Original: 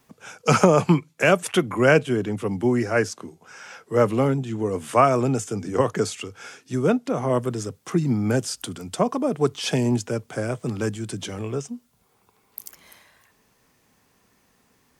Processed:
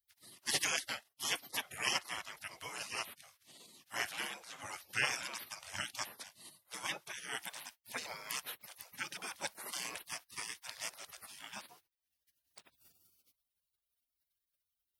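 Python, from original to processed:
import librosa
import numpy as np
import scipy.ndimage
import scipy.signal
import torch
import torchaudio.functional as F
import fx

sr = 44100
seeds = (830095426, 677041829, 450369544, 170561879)

y = fx.highpass(x, sr, hz=760.0, slope=6)
y = fx.spec_gate(y, sr, threshold_db=-25, keep='weak')
y = fx.peak_eq(y, sr, hz=7400.0, db=-8.0, octaves=0.39)
y = y * librosa.db_to_amplitude(5.5)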